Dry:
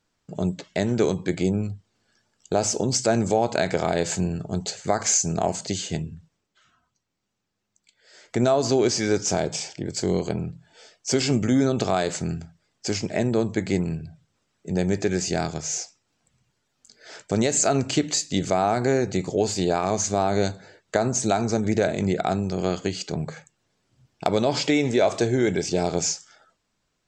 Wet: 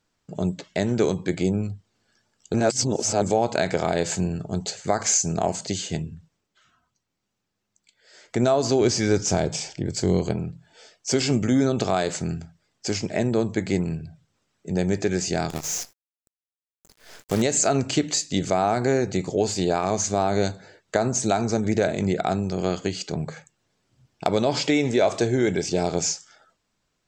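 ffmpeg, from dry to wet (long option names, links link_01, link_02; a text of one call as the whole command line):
ffmpeg -i in.wav -filter_complex "[0:a]asettb=1/sr,asplit=3[link_01][link_02][link_03];[link_01]atrim=end=8.814[link_04];[link_02]atrim=start=8.81:end=10.33,asetpts=PTS-STARTPTS,afade=type=in:duration=0.004:curve=qsin,afade=type=out:start_time=1.516:duration=0.004:curve=qsin,lowshelf=frequency=120:gain=10.5[link_05];[link_03]atrim=start=10.326[link_06];[link_04][link_05]acrossfade=duration=0.004:curve1=hsin:curve2=qsin[link_07];[link_07][link_06]acrossfade=duration=0.004:curve1=qsin:curve2=hsin,asettb=1/sr,asplit=3[link_08][link_09][link_10];[link_08]atrim=end=15.504[link_11];[link_09]atrim=start=15.5:end=17.42,asetpts=PTS-STARTPTS,afade=type=in:duration=0.004:curve=qsin,afade=type=out:start_time=1.916:duration=0.004:curve=qsin,acrusher=bits=6:dc=4:mix=0:aa=0.000001[link_12];[link_10]atrim=start=17.416[link_13];[link_11][link_12]acrossfade=duration=0.004:curve1=hsin:curve2=qsin[link_14];[link_14][link_13]acrossfade=duration=0.004:curve1=qsin:curve2=hsin,asplit=3[link_15][link_16][link_17];[link_15]atrim=end=2.542[link_18];[link_16]atrim=start=2.538:end=3.222,asetpts=PTS-STARTPTS,areverse[link_19];[link_17]atrim=start=3.218[link_20];[link_18][link_19]acrossfade=duration=0.004:curve1=hsin:curve2=hsin[link_21];[link_21][link_20]acrossfade=duration=0.004:curve1=hsin:curve2=hsin" out.wav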